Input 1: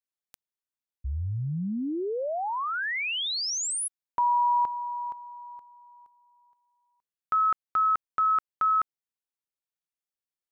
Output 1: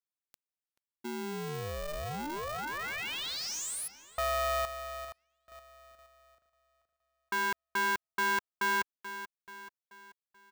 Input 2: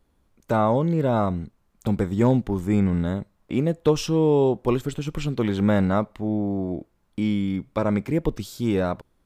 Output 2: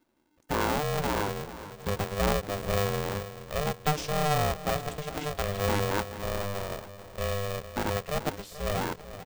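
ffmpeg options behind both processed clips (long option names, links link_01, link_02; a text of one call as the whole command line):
ffmpeg -i in.wav -filter_complex "[0:a]asplit=2[link_01][link_02];[link_02]adelay=433,lowpass=frequency=3400:poles=1,volume=-13.5dB,asplit=2[link_03][link_04];[link_04]adelay=433,lowpass=frequency=3400:poles=1,volume=0.51,asplit=2[link_05][link_06];[link_06]adelay=433,lowpass=frequency=3400:poles=1,volume=0.51,asplit=2[link_07][link_08];[link_08]adelay=433,lowpass=frequency=3400:poles=1,volume=0.51,asplit=2[link_09][link_10];[link_10]adelay=433,lowpass=frequency=3400:poles=1,volume=0.51[link_11];[link_03][link_05][link_07][link_09][link_11]amix=inputs=5:normalize=0[link_12];[link_01][link_12]amix=inputs=2:normalize=0,aeval=exprs='val(0)*sgn(sin(2*PI*300*n/s))':channel_layout=same,volume=-7.5dB" out.wav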